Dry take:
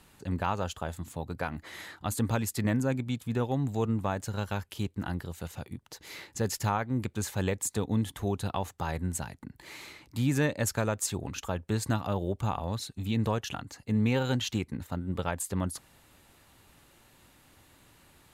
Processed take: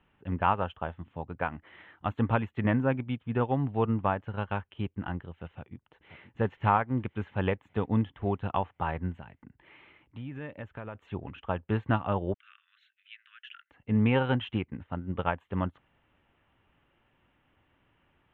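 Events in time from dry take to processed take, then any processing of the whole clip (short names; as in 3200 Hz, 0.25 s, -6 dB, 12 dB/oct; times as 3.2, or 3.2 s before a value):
5.48–6.3 echo throw 0.53 s, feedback 55%, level -9 dB
9.17–10.95 compressor 4:1, threshold -34 dBFS
12.34–13.71 steep high-pass 1400 Hz 72 dB/oct
whole clip: dynamic EQ 990 Hz, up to +4 dB, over -42 dBFS, Q 1.2; elliptic low-pass 3100 Hz, stop band 40 dB; upward expander 1.5:1, over -47 dBFS; gain +3.5 dB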